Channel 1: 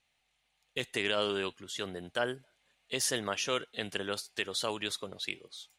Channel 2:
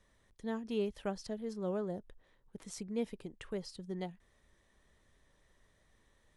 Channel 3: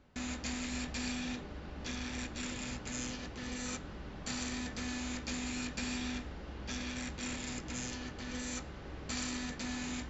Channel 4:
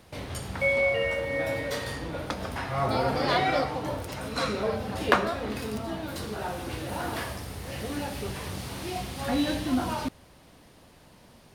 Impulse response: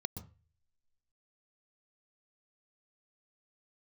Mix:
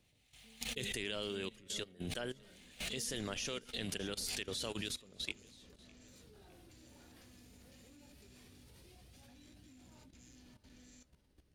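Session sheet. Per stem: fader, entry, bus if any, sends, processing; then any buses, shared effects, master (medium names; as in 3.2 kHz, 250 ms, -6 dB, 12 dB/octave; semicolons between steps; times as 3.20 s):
+1.0 dB, 0.00 s, no send, echo send -18.5 dB, swell ahead of each attack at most 44 dB/s
-16.0 dB, 0.00 s, no send, echo send -6 dB, low-pass that closes with the level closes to 800 Hz, closed at -34 dBFS; rippled EQ curve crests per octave 0.92, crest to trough 16 dB; decay stretcher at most 25 dB/s
-8.0 dB, 2.45 s, no send, no echo send, peak limiter -31 dBFS, peak gain reduction 6.5 dB
-1.5 dB, 0.00 s, no send, echo send -10.5 dB, de-hum 70.94 Hz, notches 5; compression 16:1, threshold -36 dBFS, peak gain reduction 21.5 dB; flange 0.2 Hz, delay 0 ms, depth 4.3 ms, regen +37%; auto duck -19 dB, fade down 0.25 s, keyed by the first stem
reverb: none
echo: feedback delay 608 ms, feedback 44%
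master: peaking EQ 1 kHz -11 dB 2.1 oct; level held to a coarse grid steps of 13 dB; upward expansion 1.5:1, over -52 dBFS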